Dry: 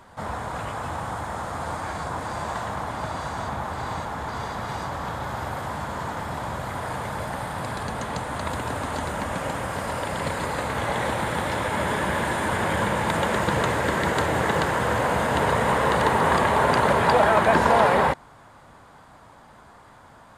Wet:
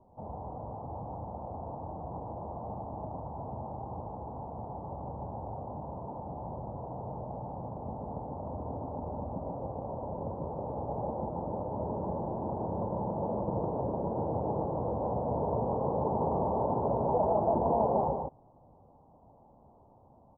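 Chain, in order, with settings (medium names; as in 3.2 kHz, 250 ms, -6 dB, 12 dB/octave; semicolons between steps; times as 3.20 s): steep low-pass 880 Hz 48 dB/octave; delay 151 ms -4 dB; trim -8.5 dB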